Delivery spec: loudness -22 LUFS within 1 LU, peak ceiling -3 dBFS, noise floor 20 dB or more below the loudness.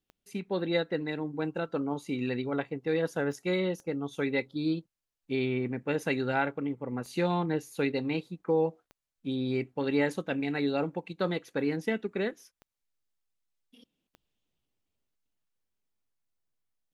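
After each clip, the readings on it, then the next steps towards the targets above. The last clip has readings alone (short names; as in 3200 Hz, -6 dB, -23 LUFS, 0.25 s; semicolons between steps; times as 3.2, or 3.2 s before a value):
clicks 7; loudness -31.5 LUFS; peak -14.5 dBFS; loudness target -22.0 LUFS
-> de-click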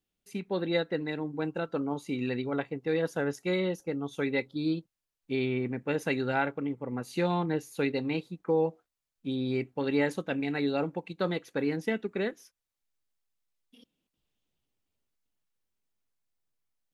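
clicks 0; loudness -31.5 LUFS; peak -14.5 dBFS; loudness target -22.0 LUFS
-> gain +9.5 dB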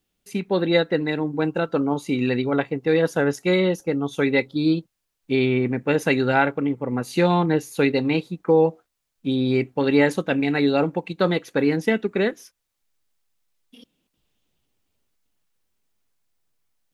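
loudness -22.0 LUFS; peak -5.0 dBFS; noise floor -78 dBFS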